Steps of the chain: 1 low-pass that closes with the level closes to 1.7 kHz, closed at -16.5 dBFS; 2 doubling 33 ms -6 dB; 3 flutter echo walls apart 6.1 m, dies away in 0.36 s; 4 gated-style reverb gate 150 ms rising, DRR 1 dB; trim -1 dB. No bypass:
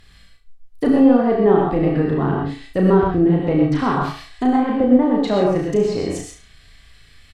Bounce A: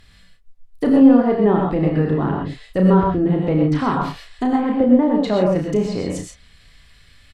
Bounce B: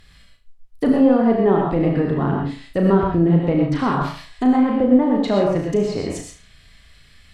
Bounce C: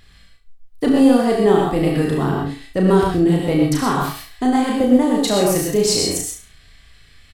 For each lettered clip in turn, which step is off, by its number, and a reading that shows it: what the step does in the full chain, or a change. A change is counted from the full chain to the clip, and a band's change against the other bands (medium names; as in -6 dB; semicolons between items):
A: 3, echo-to-direct 1.5 dB to -1.0 dB; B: 2, 125 Hz band +1.5 dB; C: 1, 4 kHz band +11.5 dB